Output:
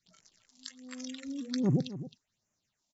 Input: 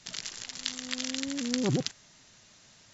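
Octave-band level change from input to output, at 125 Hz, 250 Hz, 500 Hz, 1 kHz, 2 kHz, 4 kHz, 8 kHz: +2.0 dB, -0.5 dB, -4.0 dB, -7.5 dB, -13.0 dB, -12.5 dB, no reading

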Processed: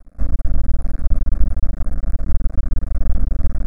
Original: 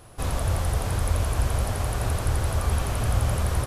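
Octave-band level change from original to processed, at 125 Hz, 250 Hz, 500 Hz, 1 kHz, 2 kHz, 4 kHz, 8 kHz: -0.5 dB, +2.5 dB, -8.0 dB, -12.5 dB, -12.5 dB, under -25 dB, -23.0 dB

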